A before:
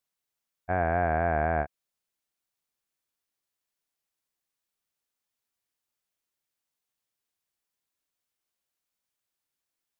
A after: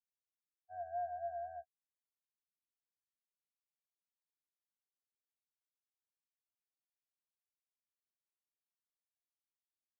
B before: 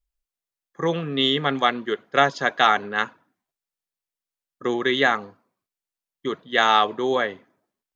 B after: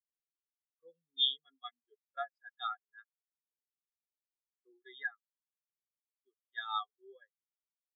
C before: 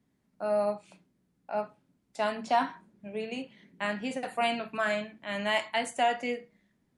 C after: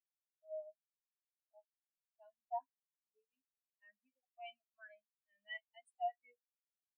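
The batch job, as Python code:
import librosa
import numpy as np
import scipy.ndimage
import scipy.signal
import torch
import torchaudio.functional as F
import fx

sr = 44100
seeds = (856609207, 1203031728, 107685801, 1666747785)

y = scipy.signal.lfilter([1.0, -0.9], [1.0], x)
y = fx.spectral_expand(y, sr, expansion=4.0)
y = F.gain(torch.from_numpy(y), -4.0).numpy()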